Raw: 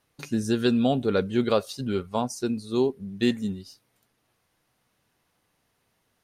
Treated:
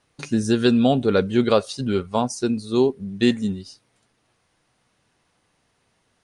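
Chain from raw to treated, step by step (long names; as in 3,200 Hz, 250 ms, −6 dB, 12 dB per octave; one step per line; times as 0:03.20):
downsampling to 22,050 Hz
level +5 dB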